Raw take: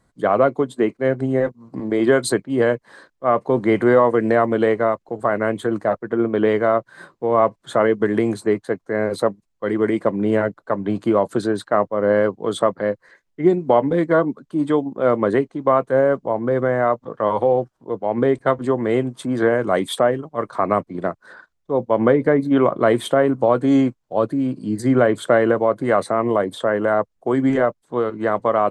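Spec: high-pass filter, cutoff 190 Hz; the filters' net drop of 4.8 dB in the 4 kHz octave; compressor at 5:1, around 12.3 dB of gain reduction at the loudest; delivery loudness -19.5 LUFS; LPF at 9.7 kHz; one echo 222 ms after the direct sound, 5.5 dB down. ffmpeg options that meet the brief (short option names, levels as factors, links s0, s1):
-af "highpass=190,lowpass=9700,equalizer=f=4000:t=o:g=-6,acompressor=threshold=0.0562:ratio=5,aecho=1:1:222:0.531,volume=2.82"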